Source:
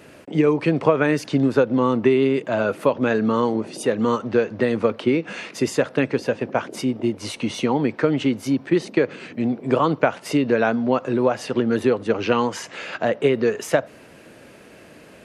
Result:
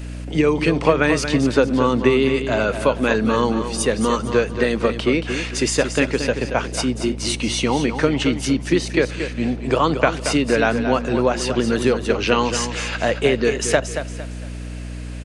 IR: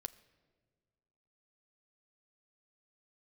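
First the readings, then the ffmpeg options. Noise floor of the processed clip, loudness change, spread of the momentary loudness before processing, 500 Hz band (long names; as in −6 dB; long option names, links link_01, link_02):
−30 dBFS, +2.0 dB, 7 LU, +1.0 dB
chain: -filter_complex "[0:a]aresample=22050,aresample=44100,highshelf=frequency=2400:gain=11.5,asplit=2[link_01][link_02];[link_02]aecho=0:1:228|456|684|912:0.355|0.117|0.0386|0.0128[link_03];[link_01][link_03]amix=inputs=2:normalize=0,aeval=exprs='val(0)+0.0355*(sin(2*PI*60*n/s)+sin(2*PI*2*60*n/s)/2+sin(2*PI*3*60*n/s)/3+sin(2*PI*4*60*n/s)/4+sin(2*PI*5*60*n/s)/5)':channel_layout=same"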